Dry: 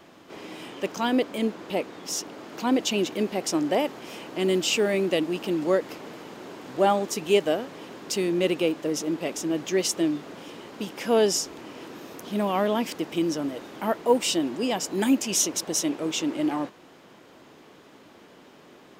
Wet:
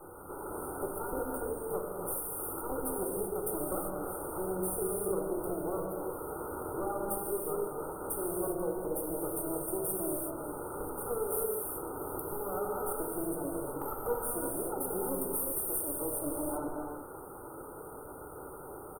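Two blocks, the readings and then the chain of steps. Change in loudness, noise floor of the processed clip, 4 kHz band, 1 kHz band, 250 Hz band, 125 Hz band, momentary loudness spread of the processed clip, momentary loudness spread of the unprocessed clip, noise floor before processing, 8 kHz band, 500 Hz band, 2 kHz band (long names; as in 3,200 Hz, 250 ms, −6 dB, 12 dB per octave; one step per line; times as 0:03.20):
−9.0 dB, −46 dBFS, below −40 dB, −7.5 dB, −12.0 dB, −7.5 dB, 11 LU, 17 LU, −52 dBFS, −7.5 dB, −8.5 dB, −16.5 dB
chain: lower of the sound and its delayed copy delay 2.3 ms
brick-wall band-stop 1,500–8,600 Hz
dynamic equaliser 1,200 Hz, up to −4 dB, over −42 dBFS, Q 1.6
harmonic and percussive parts rebalanced percussive +5 dB
high-shelf EQ 2,400 Hz +11 dB
downward compressor 3 to 1, threshold −41 dBFS, peak gain reduction 20 dB
echo with shifted repeats 143 ms, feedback 38%, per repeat +120 Hz, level −20 dB
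reverb whose tail is shaped and stops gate 410 ms flat, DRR −2.5 dB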